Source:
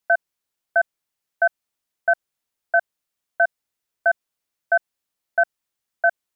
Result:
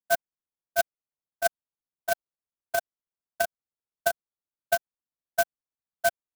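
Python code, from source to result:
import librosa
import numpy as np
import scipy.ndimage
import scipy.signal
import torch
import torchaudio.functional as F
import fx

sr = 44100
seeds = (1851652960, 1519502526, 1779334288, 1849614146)

y = scipy.signal.sosfilt(scipy.signal.butter(4, 1500.0, 'lowpass', fs=sr, output='sos'), x)
y = fx.low_shelf(y, sr, hz=430.0, db=5.0)
y = fx.level_steps(y, sr, step_db=17)
y = y * (1.0 - 0.61 / 2.0 + 0.61 / 2.0 * np.cos(2.0 * np.pi * 15.0 * (np.arange(len(y)) / sr)))
y = fx.clock_jitter(y, sr, seeds[0], jitter_ms=0.062)
y = F.gain(torch.from_numpy(y), -1.5).numpy()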